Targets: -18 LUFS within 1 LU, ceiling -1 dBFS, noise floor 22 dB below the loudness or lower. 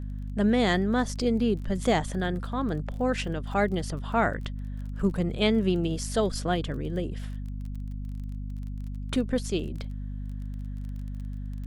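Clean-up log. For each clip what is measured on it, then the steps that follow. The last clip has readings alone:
tick rate 22 per s; hum 50 Hz; highest harmonic 250 Hz; hum level -32 dBFS; loudness -29.0 LUFS; peak level -10.0 dBFS; loudness target -18.0 LUFS
-> de-click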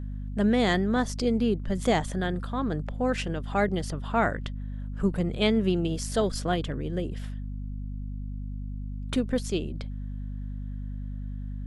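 tick rate 0 per s; hum 50 Hz; highest harmonic 250 Hz; hum level -32 dBFS
-> hum notches 50/100/150/200/250 Hz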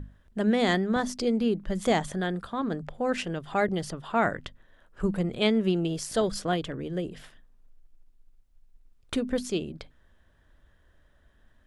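hum not found; loudness -28.5 LUFS; peak level -10.5 dBFS; loudness target -18.0 LUFS
-> trim +10.5 dB; peak limiter -1 dBFS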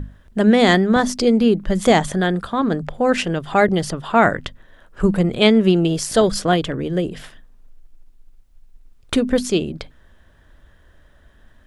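loudness -18.0 LUFS; peak level -1.0 dBFS; noise floor -52 dBFS

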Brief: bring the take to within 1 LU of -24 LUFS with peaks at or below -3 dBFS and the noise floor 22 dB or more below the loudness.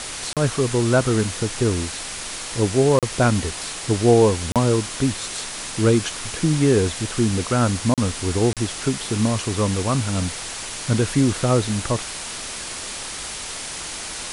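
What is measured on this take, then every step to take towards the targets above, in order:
dropouts 5; longest dropout 37 ms; noise floor -32 dBFS; noise floor target -44 dBFS; loudness -21.5 LUFS; peak level -3.5 dBFS; loudness target -24.0 LUFS
-> interpolate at 0.33/2.99/4.52/7.94/8.53 s, 37 ms; noise print and reduce 12 dB; trim -2.5 dB

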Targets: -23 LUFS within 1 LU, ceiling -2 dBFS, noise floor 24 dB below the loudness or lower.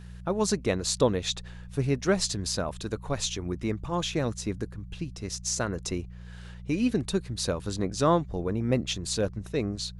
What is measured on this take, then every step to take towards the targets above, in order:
hum 60 Hz; highest harmonic 180 Hz; hum level -41 dBFS; loudness -29.5 LUFS; peak level -10.0 dBFS; loudness target -23.0 LUFS
-> de-hum 60 Hz, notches 3; trim +6.5 dB

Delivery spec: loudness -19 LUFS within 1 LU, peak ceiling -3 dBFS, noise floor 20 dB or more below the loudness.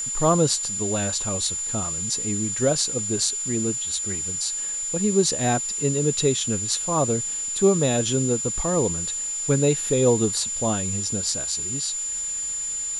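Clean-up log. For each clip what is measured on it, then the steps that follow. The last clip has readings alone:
steady tone 7.1 kHz; tone level -26 dBFS; noise floor -29 dBFS; noise floor target -43 dBFS; loudness -22.5 LUFS; peak level -6.5 dBFS; loudness target -19.0 LUFS
-> band-stop 7.1 kHz, Q 30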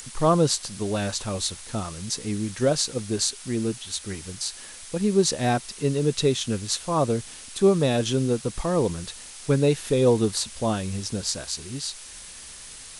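steady tone not found; noise floor -42 dBFS; noise floor target -45 dBFS
-> noise reduction 6 dB, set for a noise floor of -42 dBFS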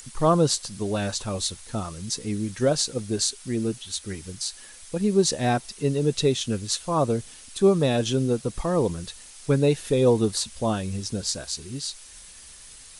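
noise floor -46 dBFS; loudness -25.0 LUFS; peak level -7.5 dBFS; loudness target -19.0 LUFS
-> trim +6 dB; peak limiter -3 dBFS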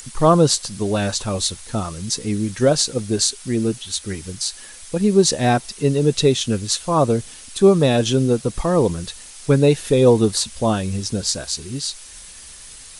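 loudness -19.0 LUFS; peak level -3.0 dBFS; noise floor -40 dBFS

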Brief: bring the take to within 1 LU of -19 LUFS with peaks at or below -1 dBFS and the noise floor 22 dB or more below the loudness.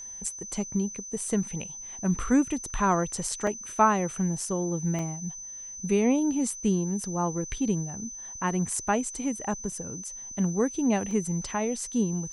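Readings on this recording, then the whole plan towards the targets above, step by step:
dropouts 5; longest dropout 2.3 ms; steady tone 6.1 kHz; tone level -38 dBFS; loudness -28.5 LUFS; peak level -8.5 dBFS; loudness target -19.0 LUFS
-> interpolate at 1.28/3.47/4.99/9.72/11.11 s, 2.3 ms; band-stop 6.1 kHz, Q 30; trim +9.5 dB; peak limiter -1 dBFS

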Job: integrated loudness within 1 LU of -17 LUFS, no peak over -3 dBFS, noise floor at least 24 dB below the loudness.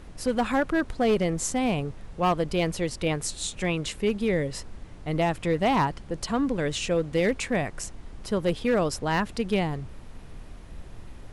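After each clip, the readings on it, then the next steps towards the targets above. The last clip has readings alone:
clipped samples 0.8%; clipping level -17.0 dBFS; noise floor -44 dBFS; noise floor target -51 dBFS; loudness -27.0 LUFS; peak level -17.0 dBFS; loudness target -17.0 LUFS
-> clip repair -17 dBFS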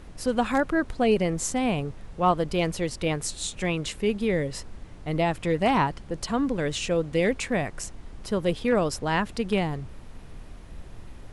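clipped samples 0.0%; noise floor -44 dBFS; noise floor target -51 dBFS
-> noise print and reduce 7 dB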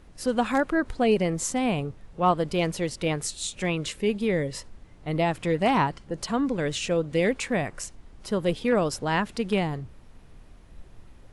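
noise floor -51 dBFS; loudness -26.5 LUFS; peak level -10.0 dBFS; loudness target -17.0 LUFS
-> trim +9.5 dB; peak limiter -3 dBFS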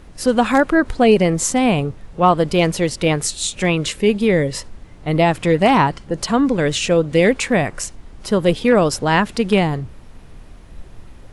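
loudness -17.0 LUFS; peak level -3.0 dBFS; noise floor -41 dBFS

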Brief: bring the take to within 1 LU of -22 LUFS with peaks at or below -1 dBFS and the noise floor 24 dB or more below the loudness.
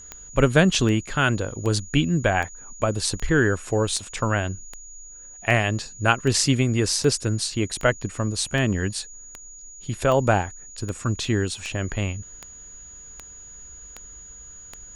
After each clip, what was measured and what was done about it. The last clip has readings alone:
clicks found 20; steady tone 6.8 kHz; tone level -41 dBFS; loudness -23.0 LUFS; peak level -2.5 dBFS; loudness target -22.0 LUFS
-> de-click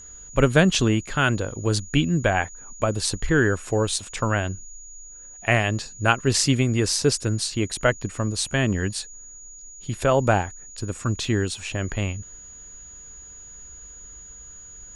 clicks found 0; steady tone 6.8 kHz; tone level -41 dBFS
-> band-stop 6.8 kHz, Q 30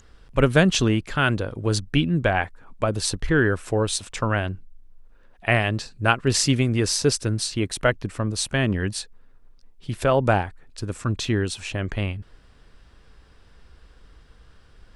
steady tone not found; loudness -23.0 LUFS; peak level -2.5 dBFS; loudness target -22.0 LUFS
-> trim +1 dB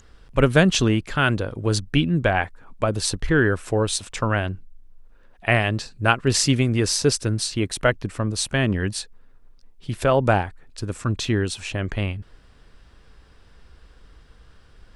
loudness -22.0 LUFS; peak level -1.5 dBFS; noise floor -52 dBFS

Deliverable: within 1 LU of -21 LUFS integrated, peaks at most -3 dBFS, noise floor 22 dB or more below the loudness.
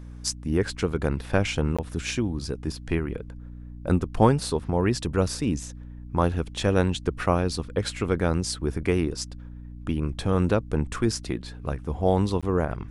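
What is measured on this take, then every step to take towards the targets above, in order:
dropouts 2; longest dropout 16 ms; hum 60 Hz; highest harmonic 300 Hz; hum level -38 dBFS; loudness -26.5 LUFS; peak level -4.5 dBFS; loudness target -21.0 LUFS
-> interpolate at 1.77/12.41 s, 16 ms; hum notches 60/120/180/240/300 Hz; trim +5.5 dB; peak limiter -3 dBFS

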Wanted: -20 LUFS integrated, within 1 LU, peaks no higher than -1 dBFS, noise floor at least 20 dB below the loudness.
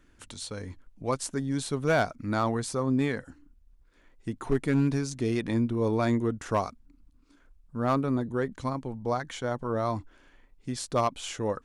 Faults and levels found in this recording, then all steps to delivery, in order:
clipped samples 0.3%; clipping level -17.0 dBFS; loudness -29.5 LUFS; peak level -17.0 dBFS; loudness target -20.0 LUFS
-> clip repair -17 dBFS; trim +9.5 dB

